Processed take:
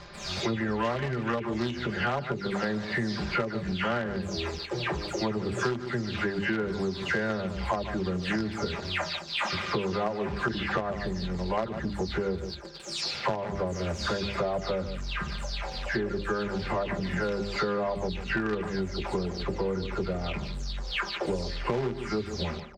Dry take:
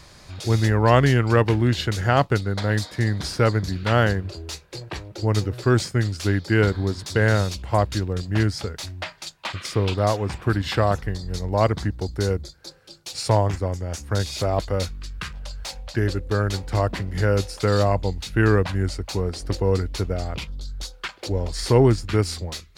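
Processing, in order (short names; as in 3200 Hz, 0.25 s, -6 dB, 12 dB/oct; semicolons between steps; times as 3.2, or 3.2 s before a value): spectral delay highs early, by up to 0.268 s; in parallel at -11.5 dB: companded quantiser 2-bit; on the sum: air absorption 170 m; notches 50/100/150/200/250/300/350/400 Hz; comb 5 ms, depth 38%; on a send: echo 0.147 s -14 dB; on the sum: compressor 10:1, threshold -30 dBFS, peak gain reduction 21.5 dB; low shelf 62 Hz -8.5 dB; gain +4.5 dB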